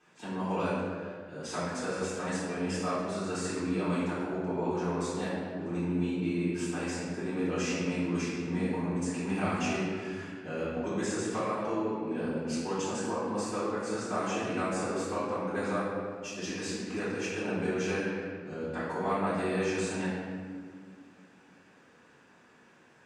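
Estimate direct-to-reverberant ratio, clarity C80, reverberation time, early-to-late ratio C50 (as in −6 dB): −15.5 dB, 0.5 dB, 1.9 s, −2.0 dB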